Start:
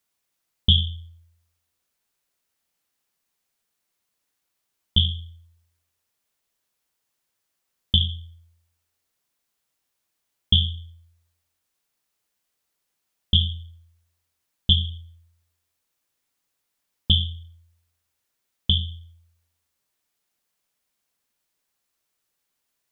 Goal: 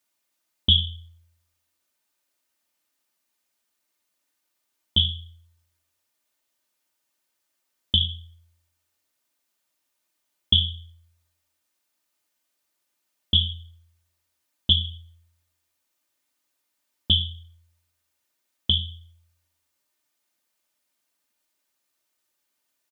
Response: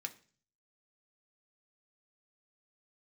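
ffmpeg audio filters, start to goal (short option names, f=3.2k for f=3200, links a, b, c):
-af "highpass=67,lowshelf=f=180:g=-4,aecho=1:1:3.3:0.52"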